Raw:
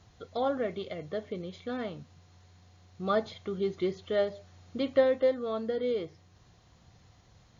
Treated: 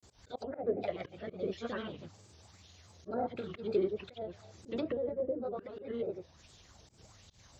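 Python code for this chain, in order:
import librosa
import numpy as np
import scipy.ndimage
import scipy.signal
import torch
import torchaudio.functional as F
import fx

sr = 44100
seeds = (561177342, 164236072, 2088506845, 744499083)

p1 = scipy.signal.sosfilt(scipy.signal.butter(2, 48.0, 'highpass', fs=sr, output='sos'), x)
p2 = fx.bass_treble(p1, sr, bass_db=-2, treble_db=13)
p3 = p2 + fx.room_early_taps(p2, sr, ms=(29, 56), db=(-8.5, -4.5), dry=0)
p4 = fx.hpss(p3, sr, part='harmonic', gain_db=-9)
p5 = fx.low_shelf(p4, sr, hz=110.0, db=10.5)
p6 = fx.env_lowpass_down(p5, sr, base_hz=390.0, full_db=-30.0)
p7 = fx.granulator(p6, sr, seeds[0], grain_ms=100.0, per_s=20.0, spray_ms=100.0, spread_st=3)
p8 = fx.auto_swell(p7, sr, attack_ms=124.0)
p9 = fx.bell_lfo(p8, sr, hz=1.3, low_hz=330.0, high_hz=3400.0, db=9)
y = F.gain(torch.from_numpy(p9), 1.5).numpy()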